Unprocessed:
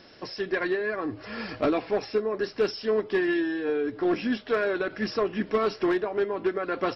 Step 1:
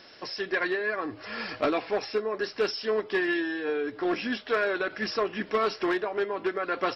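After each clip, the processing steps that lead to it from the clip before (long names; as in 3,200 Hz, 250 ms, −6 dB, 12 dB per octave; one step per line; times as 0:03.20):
low-shelf EQ 440 Hz −10.5 dB
level +3 dB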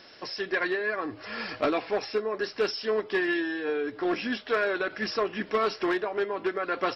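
no processing that can be heard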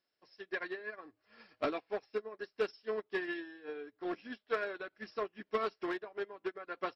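expander for the loud parts 2.5 to 1, over −42 dBFS
level −5.5 dB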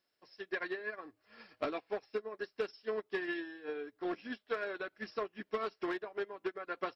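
downward compressor, threshold −35 dBFS, peak gain reduction 7.5 dB
level +3 dB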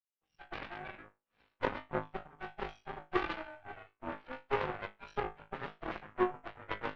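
partials spread apart or drawn together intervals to 80%
flutter between parallel walls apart 3.3 metres, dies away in 0.43 s
harmonic generator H 3 −10 dB, 4 −19 dB, 7 −40 dB, 8 −36 dB, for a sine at −23 dBFS
level +7 dB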